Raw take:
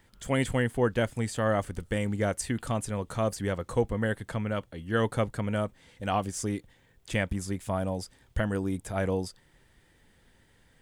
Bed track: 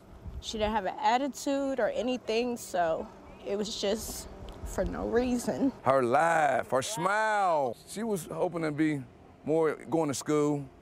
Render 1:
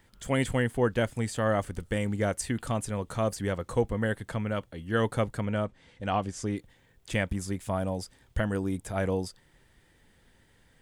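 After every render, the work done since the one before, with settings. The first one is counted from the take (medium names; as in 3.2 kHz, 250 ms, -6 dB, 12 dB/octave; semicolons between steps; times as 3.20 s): 5.45–6.57 s: distance through air 65 m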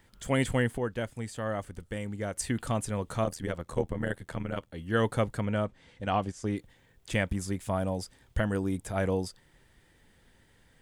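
0.78–2.36 s: gain -6.5 dB; 3.24–4.73 s: AM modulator 81 Hz, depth 75%; 6.05–6.48 s: gate -37 dBFS, range -7 dB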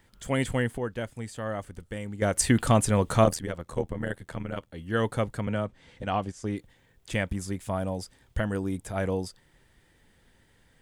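2.22–3.39 s: gain +9 dB; 5.47–6.03 s: three bands compressed up and down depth 40%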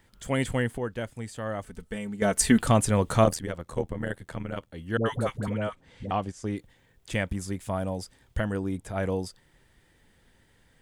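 1.65–2.59 s: comb 4.6 ms, depth 68%; 4.97–6.11 s: phase dispersion highs, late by 88 ms, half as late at 640 Hz; 8.52–9.03 s: treble shelf 5.6 kHz -6 dB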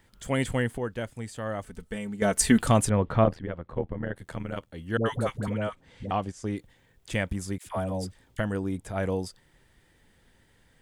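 2.89–4.16 s: distance through air 390 m; 7.58–8.39 s: phase dispersion lows, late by 84 ms, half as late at 650 Hz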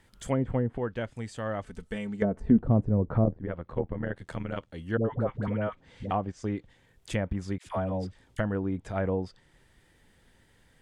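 low-pass that closes with the level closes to 440 Hz, closed at -20.5 dBFS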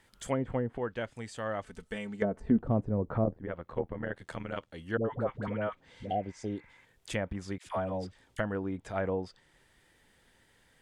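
bass shelf 290 Hz -8 dB; 5.96–6.82 s: spectral replace 790–2700 Hz before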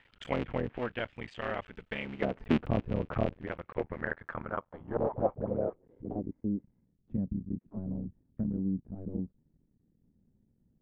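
cycle switcher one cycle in 3, muted; low-pass sweep 2.7 kHz -> 220 Hz, 3.56–6.65 s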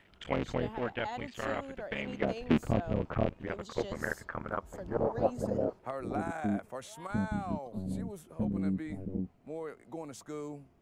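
add bed track -14 dB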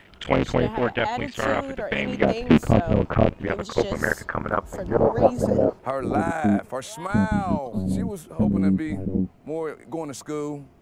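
trim +11.5 dB; peak limiter -3 dBFS, peak gain reduction 1.5 dB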